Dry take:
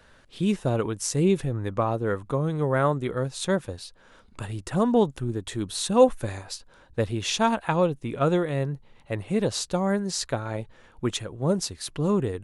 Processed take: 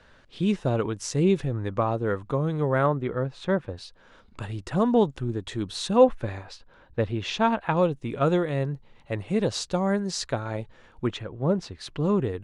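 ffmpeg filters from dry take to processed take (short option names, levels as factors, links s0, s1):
-af "asetnsamples=n=441:p=0,asendcmd='2.86 lowpass f 2400;3.77 lowpass f 5700;5.97 lowpass f 3300;7.77 lowpass f 6900;11.07 lowpass f 2800;11.79 lowpass f 4500',lowpass=5800"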